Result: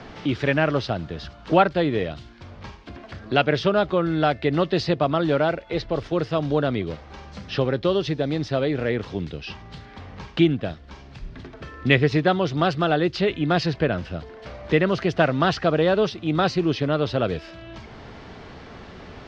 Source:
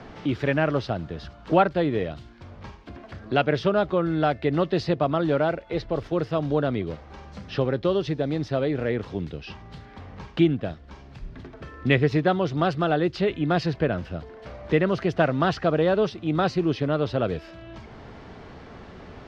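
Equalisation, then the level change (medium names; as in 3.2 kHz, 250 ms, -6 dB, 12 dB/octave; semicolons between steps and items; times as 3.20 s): distance through air 75 m; treble shelf 2.9 kHz +10.5 dB; +1.5 dB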